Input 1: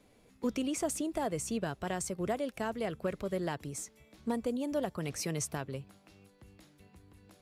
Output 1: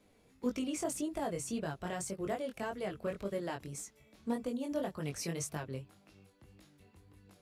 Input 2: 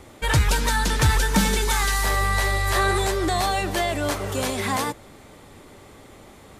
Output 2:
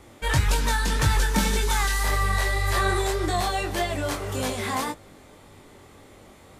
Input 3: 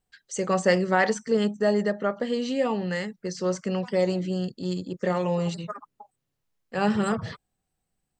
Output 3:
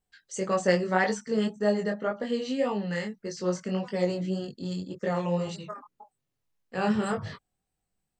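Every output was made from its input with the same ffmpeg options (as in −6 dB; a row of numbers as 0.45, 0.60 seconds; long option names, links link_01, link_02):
-af "flanger=delay=19.5:depth=4.1:speed=1.8"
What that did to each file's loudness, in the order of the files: −2.5, −2.5, −2.5 LU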